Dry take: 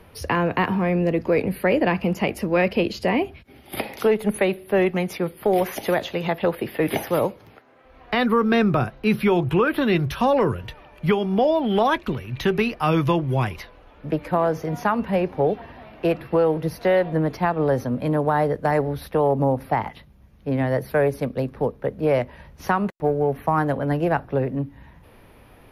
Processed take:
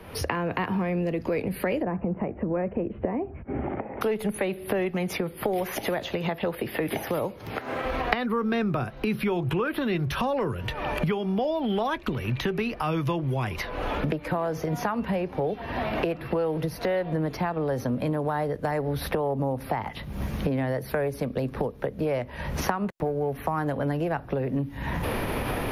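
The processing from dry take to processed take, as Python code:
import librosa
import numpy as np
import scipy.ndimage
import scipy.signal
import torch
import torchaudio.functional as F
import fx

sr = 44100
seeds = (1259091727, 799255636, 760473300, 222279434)

y = fx.recorder_agc(x, sr, target_db=-13.5, rise_db_per_s=74.0, max_gain_db=30)
y = fx.gaussian_blur(y, sr, sigma=6.3, at=(1.81, 4.01), fade=0.02)
y = fx.band_squash(y, sr, depth_pct=40)
y = F.gain(torch.from_numpy(y), -7.5).numpy()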